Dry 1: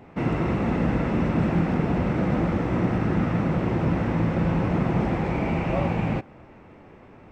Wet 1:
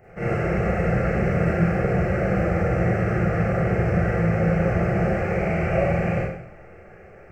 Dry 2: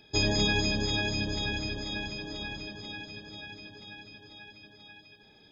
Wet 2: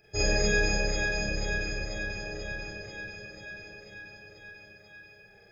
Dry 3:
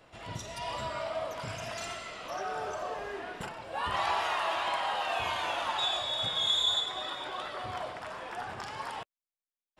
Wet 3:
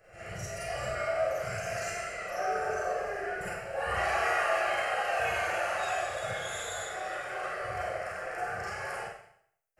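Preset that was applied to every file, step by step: fixed phaser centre 970 Hz, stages 6; Schroeder reverb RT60 0.66 s, combs from 32 ms, DRR -7 dB; gain -1 dB

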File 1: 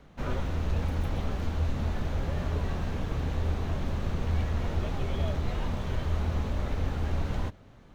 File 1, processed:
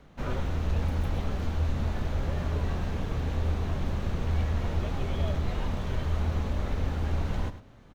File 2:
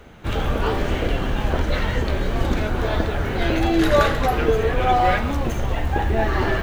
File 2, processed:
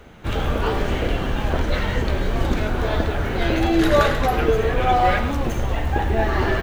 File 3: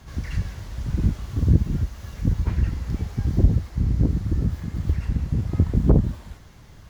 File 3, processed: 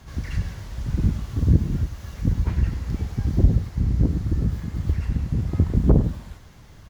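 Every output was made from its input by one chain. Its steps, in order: echo 0.102 s -12.5 dB

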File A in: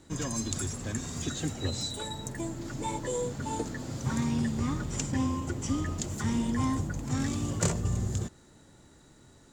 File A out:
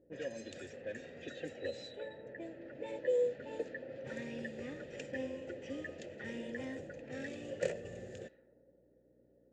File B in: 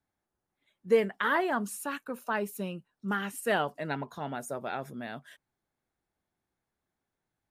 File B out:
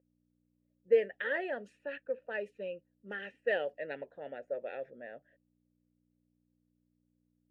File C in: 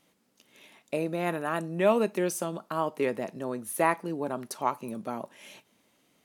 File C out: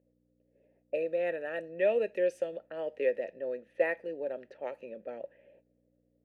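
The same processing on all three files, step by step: low-pass opened by the level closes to 440 Hz, open at -26.5 dBFS; hum 60 Hz, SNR 20 dB; vowel filter e; gain +6 dB

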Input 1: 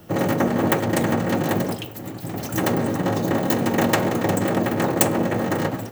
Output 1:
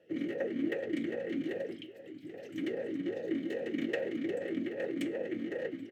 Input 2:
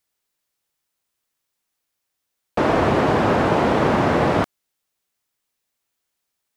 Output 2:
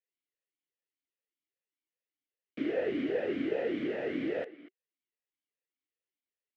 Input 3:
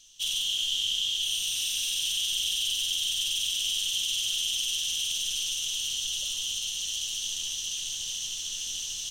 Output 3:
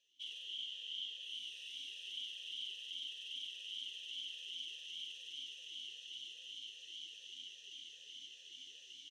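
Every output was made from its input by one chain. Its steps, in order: speakerphone echo 0.24 s, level -15 dB; vowel sweep e-i 2.5 Hz; gain -4 dB

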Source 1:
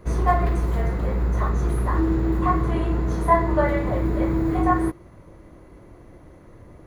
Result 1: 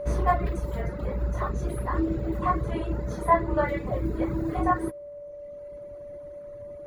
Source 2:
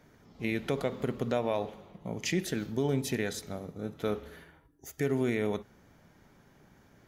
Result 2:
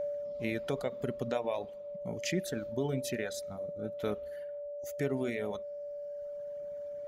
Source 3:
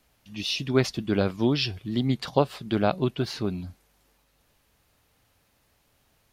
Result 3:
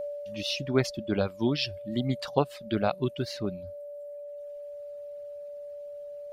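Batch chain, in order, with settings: whine 580 Hz -29 dBFS; reverb removal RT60 1.6 s; gain -2.5 dB

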